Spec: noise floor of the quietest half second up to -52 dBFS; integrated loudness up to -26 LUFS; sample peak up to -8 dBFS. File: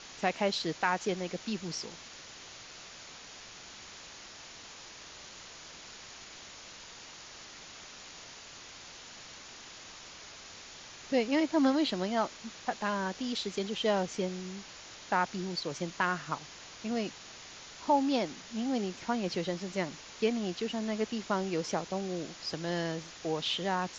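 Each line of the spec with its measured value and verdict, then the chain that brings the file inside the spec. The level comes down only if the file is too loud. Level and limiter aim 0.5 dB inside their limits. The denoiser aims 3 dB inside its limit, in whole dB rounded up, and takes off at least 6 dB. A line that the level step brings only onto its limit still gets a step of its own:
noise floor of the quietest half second -49 dBFS: fail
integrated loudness -33.0 LUFS: pass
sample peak -13.5 dBFS: pass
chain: noise reduction 6 dB, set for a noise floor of -49 dBFS

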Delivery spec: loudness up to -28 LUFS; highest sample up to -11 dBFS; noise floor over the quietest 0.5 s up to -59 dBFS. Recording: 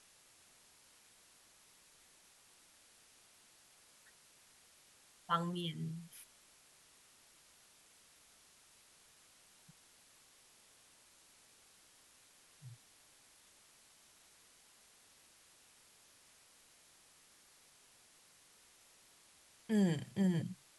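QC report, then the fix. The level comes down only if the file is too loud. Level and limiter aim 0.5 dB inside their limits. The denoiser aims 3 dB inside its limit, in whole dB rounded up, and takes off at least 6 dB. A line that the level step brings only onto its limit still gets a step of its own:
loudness -37.5 LUFS: pass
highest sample -20.5 dBFS: pass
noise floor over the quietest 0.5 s -66 dBFS: pass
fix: none needed

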